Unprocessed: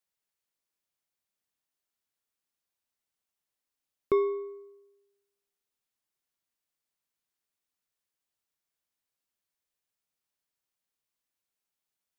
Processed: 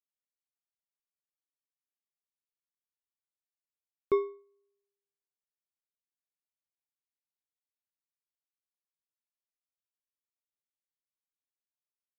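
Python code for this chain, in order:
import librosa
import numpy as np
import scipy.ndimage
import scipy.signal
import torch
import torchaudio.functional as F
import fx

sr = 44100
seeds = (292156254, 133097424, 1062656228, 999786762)

y = fx.upward_expand(x, sr, threshold_db=-39.0, expansion=2.5)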